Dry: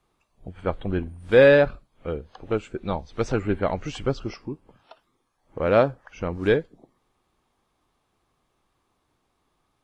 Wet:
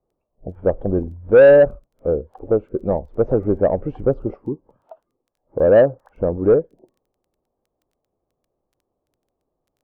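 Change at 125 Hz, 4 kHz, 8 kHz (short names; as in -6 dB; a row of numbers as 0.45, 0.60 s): +3.0 dB, under -10 dB, n/a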